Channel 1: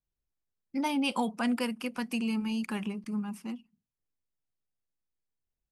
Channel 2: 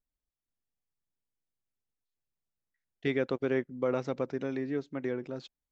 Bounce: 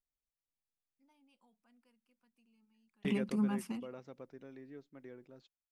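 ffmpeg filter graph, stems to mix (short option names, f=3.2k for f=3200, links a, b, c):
-filter_complex "[0:a]adelay=250,volume=1.5dB[a];[1:a]volume=-8dB,afade=t=out:st=2.93:d=0.69:silence=0.316228,asplit=2[b][c];[c]apad=whole_len=262849[d];[a][d]sidechaingate=range=-43dB:threshold=-58dB:ratio=16:detection=peak[e];[e][b]amix=inputs=2:normalize=0"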